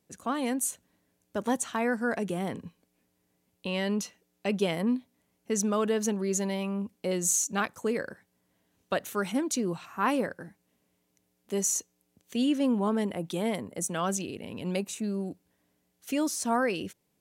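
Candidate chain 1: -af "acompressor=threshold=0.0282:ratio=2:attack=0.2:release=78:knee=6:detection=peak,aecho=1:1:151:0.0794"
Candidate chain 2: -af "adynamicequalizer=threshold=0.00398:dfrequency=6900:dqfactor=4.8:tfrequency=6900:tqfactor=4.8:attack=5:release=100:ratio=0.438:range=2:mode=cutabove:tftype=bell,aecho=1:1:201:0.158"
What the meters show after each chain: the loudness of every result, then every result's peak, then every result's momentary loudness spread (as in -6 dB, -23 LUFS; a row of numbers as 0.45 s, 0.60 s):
-35.0 LUFS, -30.0 LUFS; -22.0 dBFS, -14.0 dBFS; 9 LU, 14 LU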